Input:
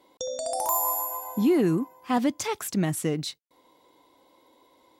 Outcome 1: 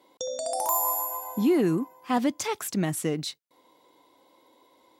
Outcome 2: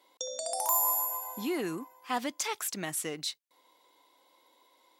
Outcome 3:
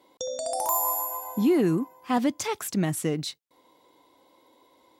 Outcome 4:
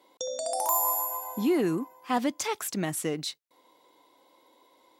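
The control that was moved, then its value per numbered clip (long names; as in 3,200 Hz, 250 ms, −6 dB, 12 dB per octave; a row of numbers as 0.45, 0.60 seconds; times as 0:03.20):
high-pass filter, corner frequency: 130, 1,200, 46, 360 Hertz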